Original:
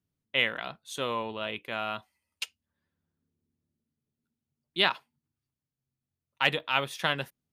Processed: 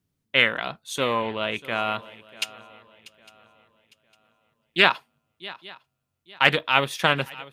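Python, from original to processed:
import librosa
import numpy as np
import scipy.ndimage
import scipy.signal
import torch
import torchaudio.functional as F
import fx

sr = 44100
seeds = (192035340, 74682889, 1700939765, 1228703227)

y = fx.echo_swing(x, sr, ms=855, ratio=3, feedback_pct=31, wet_db=-19.5)
y = fx.doppler_dist(y, sr, depth_ms=0.2)
y = y * 10.0 ** (7.0 / 20.0)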